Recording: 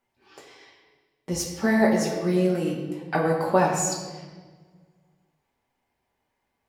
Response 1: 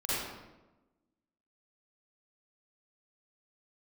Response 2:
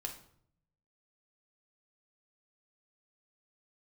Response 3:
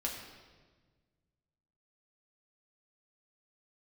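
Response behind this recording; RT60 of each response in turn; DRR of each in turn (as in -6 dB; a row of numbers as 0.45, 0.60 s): 3; 1.1, 0.65, 1.4 s; -11.0, 2.5, -2.0 dB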